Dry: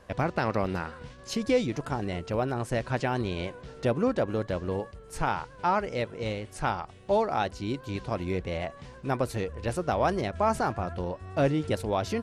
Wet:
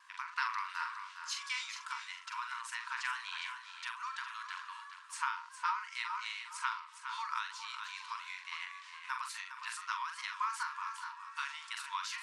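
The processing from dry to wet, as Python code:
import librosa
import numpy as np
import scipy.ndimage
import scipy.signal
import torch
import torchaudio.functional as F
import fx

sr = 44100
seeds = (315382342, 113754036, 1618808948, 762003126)

p1 = scipy.signal.sosfilt(scipy.signal.butter(4, 9900.0, 'lowpass', fs=sr, output='sos'), x)
p2 = fx.vibrato(p1, sr, rate_hz=0.69, depth_cents=11.0)
p3 = fx.brickwall_highpass(p2, sr, low_hz=910.0)
p4 = fx.doubler(p3, sr, ms=43.0, db=-6.5)
p5 = p4 + fx.echo_feedback(p4, sr, ms=410, feedback_pct=30, wet_db=-9.5, dry=0)
p6 = fx.end_taper(p5, sr, db_per_s=100.0)
y = F.gain(torch.from_numpy(p6), -1.5).numpy()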